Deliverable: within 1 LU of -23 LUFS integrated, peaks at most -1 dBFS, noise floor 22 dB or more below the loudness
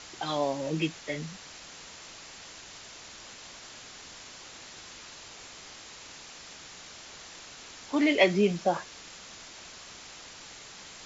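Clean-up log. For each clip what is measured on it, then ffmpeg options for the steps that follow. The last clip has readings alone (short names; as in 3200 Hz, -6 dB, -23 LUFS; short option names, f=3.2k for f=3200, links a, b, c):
noise floor -48 dBFS; noise floor target -50 dBFS; loudness -28.0 LUFS; peak -9.0 dBFS; loudness target -23.0 LUFS
-> -af "afftdn=nr=6:nf=-48"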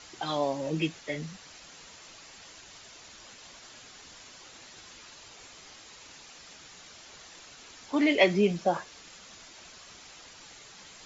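noise floor -51 dBFS; loudness -28.0 LUFS; peak -9.0 dBFS; loudness target -23.0 LUFS
-> -af "volume=5dB"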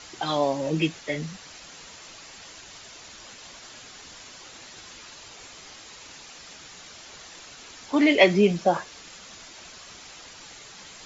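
loudness -23.0 LUFS; peak -4.0 dBFS; noise floor -46 dBFS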